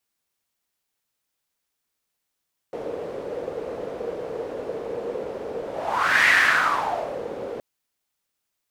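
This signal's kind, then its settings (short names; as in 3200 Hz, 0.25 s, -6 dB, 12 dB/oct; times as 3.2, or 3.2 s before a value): whoosh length 4.87 s, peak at 3.55, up 0.66 s, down 1.04 s, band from 480 Hz, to 1900 Hz, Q 5, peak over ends 14.5 dB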